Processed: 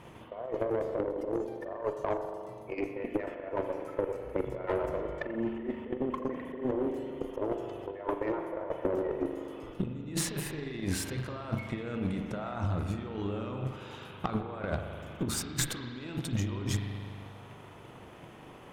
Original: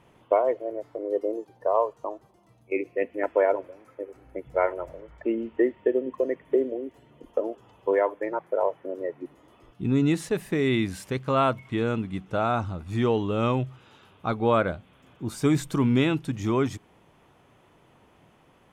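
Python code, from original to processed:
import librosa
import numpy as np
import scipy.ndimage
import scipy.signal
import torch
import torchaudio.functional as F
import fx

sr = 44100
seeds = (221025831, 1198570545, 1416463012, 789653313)

y = fx.over_compress(x, sr, threshold_db=-35.0, ratio=-1.0)
y = fx.rev_spring(y, sr, rt60_s=2.1, pass_ms=(40,), chirp_ms=20, drr_db=3.0)
y = fx.tube_stage(y, sr, drive_db=25.0, bias=0.45)
y = fx.transient(y, sr, attack_db=6, sustain_db=0)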